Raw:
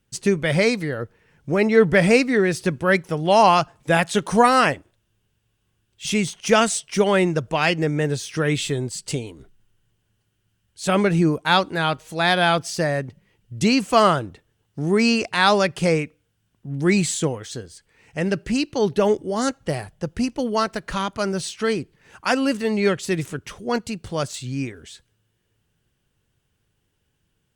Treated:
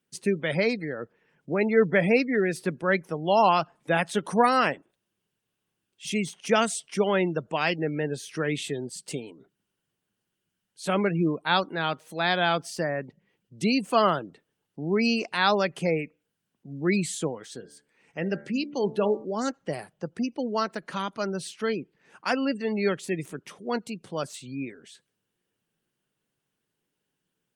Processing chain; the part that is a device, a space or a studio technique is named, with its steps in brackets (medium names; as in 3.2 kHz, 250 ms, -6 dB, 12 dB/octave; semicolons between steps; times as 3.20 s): 17.55–19.25 s: de-hum 72.75 Hz, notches 32; 23.08–23.74 s: dynamic bell 1.5 kHz, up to -5 dB, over -52 dBFS, Q 7.1; noise-suppressed video call (high-pass 160 Hz 24 dB/octave; spectral gate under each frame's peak -30 dB strong; trim -5.5 dB; Opus 32 kbps 48 kHz)